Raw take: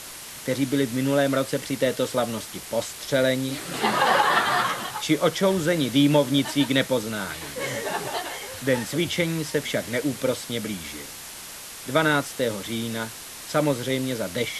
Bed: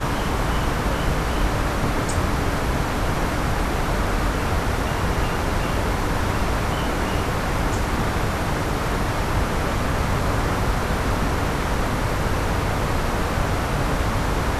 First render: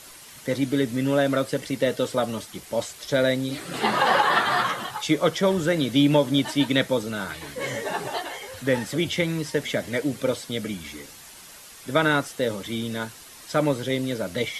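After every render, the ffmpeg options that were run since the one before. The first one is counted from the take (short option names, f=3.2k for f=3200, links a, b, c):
-af "afftdn=nr=8:nf=-39"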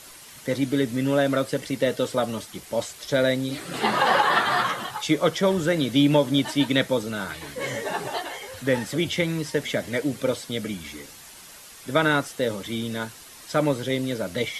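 -af anull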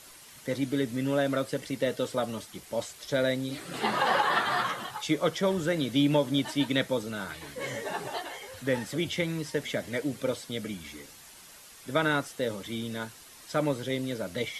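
-af "volume=-5.5dB"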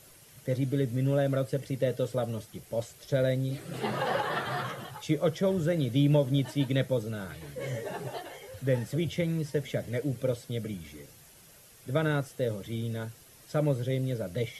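-af "equalizer=f=125:t=o:w=1:g=10,equalizer=f=250:t=o:w=1:g=-5,equalizer=f=500:t=o:w=1:g=3,equalizer=f=1k:t=o:w=1:g=-8,equalizer=f=2k:t=o:w=1:g=-4,equalizer=f=4k:t=o:w=1:g=-6,equalizer=f=8k:t=o:w=1:g=-5"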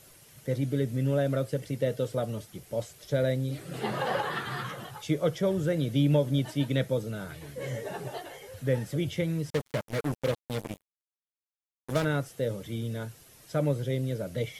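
-filter_complex "[0:a]asettb=1/sr,asplit=3[a][b][c];[a]atrim=end=4.304[d];[b]atrim=start=4.3:end=4.72,asetpts=PTS-STARTPTS,afade=t=in:d=0.004:c=qsin,afade=t=out:st=0.416:d=0.004:c=qsin,equalizer=f=630:w=2.5:g=-12.5[e];[c]atrim=start=4.716[f];[d][e]acrossfade=d=0.004:c1=hsin:c2=qsin[g];[g][f]acrossfade=d=0.004:c1=qsin:c2=hsin,asettb=1/sr,asplit=3[h][i][j];[h]atrim=end=9.504[k];[i]atrim=start=9.5:end=12.05,asetpts=PTS-STARTPTS,afade=t=in:d=0.004:c=qsin,afade=t=out:st=2.546:d=0.004:c=qsin,acrusher=bits=4:mix=0:aa=0.5[l];[j]atrim=start=12.046[m];[k][l]acrossfade=d=0.004:c1=hsin:c2=qsin[n];[n][m]acrossfade=d=0.004:c1=qsin:c2=hsin"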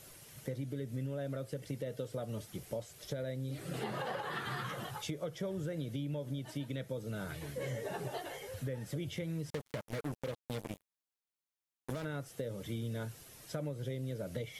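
-af "alimiter=limit=-23dB:level=0:latency=1:release=342,acompressor=threshold=-36dB:ratio=4"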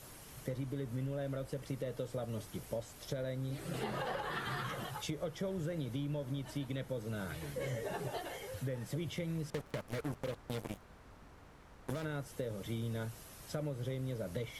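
-filter_complex "[1:a]volume=-35.5dB[a];[0:a][a]amix=inputs=2:normalize=0"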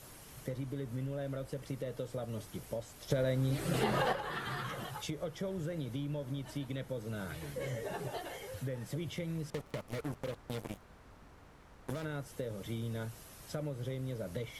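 -filter_complex "[0:a]asettb=1/sr,asplit=3[a][b][c];[a]atrim=end=3.104[d];[b]atrim=start=3.1:end=4.13,asetpts=PTS-STARTPTS,afade=t=in:d=0.004:c=qsin,afade=t=out:st=1.026:d=0.004:c=qsin,acontrast=89[e];[c]atrim=start=4.126[f];[d][e]acrossfade=d=0.004:c1=hsin:c2=qsin[g];[g][f]acrossfade=d=0.004:c1=qsin:c2=hsin,asettb=1/sr,asplit=3[h][i][j];[h]atrim=end=9.534[k];[i]atrim=start=9.53:end=10.03,asetpts=PTS-STARTPTS,afade=t=in:d=0.004:c=qsin,afade=t=out:st=0.496:d=0.004:c=qsin,bandreject=f=1.6k:w=9.7[l];[j]atrim=start=10.026[m];[k][l]acrossfade=d=0.004:c1=hsin:c2=qsin[n];[n][m]acrossfade=d=0.004:c1=qsin:c2=hsin"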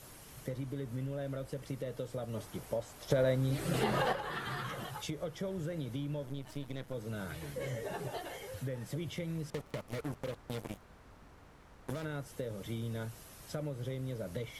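-filter_complex "[0:a]asettb=1/sr,asplit=3[a][b][c];[a]atrim=end=2.344[d];[b]atrim=start=2.34:end=3.36,asetpts=PTS-STARTPTS,afade=t=in:d=0.004:c=qsin,afade=t=out:st=1.016:d=0.004:c=qsin,equalizer=f=840:t=o:w=2.1:g=5[e];[c]atrim=start=3.356[f];[d][e]acrossfade=d=0.004:c1=hsin:c2=qsin[g];[g][f]acrossfade=d=0.004:c1=qsin:c2=hsin,asettb=1/sr,asplit=3[h][i][j];[h]atrim=end=6.264[k];[i]atrim=start=6.26:end=6.94,asetpts=PTS-STARTPTS,afade=t=in:d=0.004:c=qsin,afade=t=out:st=0.676:d=0.004:c=qsin,aeval=exprs='if(lt(val(0),0),0.251*val(0),val(0))':c=same[l];[j]atrim=start=6.936[m];[k][l]acrossfade=d=0.004:c1=hsin:c2=qsin[n];[n][m]acrossfade=d=0.004:c1=qsin:c2=hsin"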